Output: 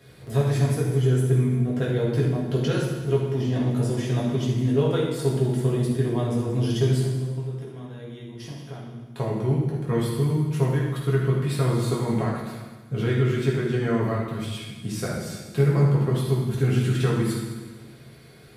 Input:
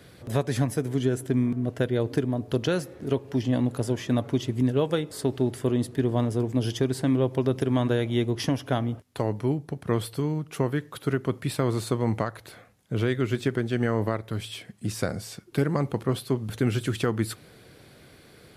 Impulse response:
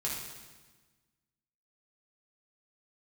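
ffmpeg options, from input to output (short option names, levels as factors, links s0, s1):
-filter_complex "[0:a]asettb=1/sr,asplit=3[s0][s1][s2];[s0]atrim=end=7.024[s3];[s1]atrim=start=7.02:end=9.18,asetpts=PTS-STARTPTS,afade=t=in:d=0.004:c=qsin,afade=t=out:st=2.156:d=0.004:c=qsin,acompressor=threshold=0.0158:ratio=10[s4];[s2]atrim=start=9.176[s5];[s3][s4]acrossfade=d=0.004:c1=hsin:c2=qsin[s6];[s6][s5]acrossfade=d=0.004:c1=qsin:c2=hsin[s7];[1:a]atrim=start_sample=2205[s8];[s7][s8]afir=irnorm=-1:irlink=0,volume=0.708"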